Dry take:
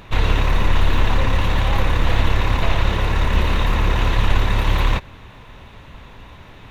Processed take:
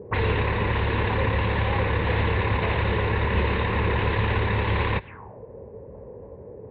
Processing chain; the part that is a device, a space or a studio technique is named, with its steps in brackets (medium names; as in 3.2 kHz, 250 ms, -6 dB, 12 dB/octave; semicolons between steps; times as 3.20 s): envelope filter bass rig (touch-sensitive low-pass 410–4200 Hz up, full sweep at -16.5 dBFS; cabinet simulation 65–2200 Hz, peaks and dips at 78 Hz -4 dB, 150 Hz -4 dB, 280 Hz -6 dB, 440 Hz +6 dB, 670 Hz -7 dB, 1.3 kHz -9 dB)